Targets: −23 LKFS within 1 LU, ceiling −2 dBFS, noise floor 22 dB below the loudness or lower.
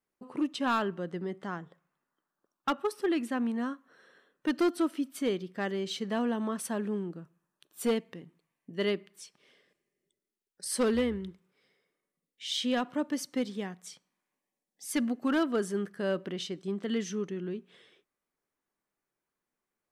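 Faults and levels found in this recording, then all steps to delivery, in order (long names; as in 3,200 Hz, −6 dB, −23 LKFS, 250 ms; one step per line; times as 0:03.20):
share of clipped samples 0.5%; peaks flattened at −21.5 dBFS; integrated loudness −32.5 LKFS; sample peak −21.5 dBFS; target loudness −23.0 LKFS
→ clipped peaks rebuilt −21.5 dBFS
level +9.5 dB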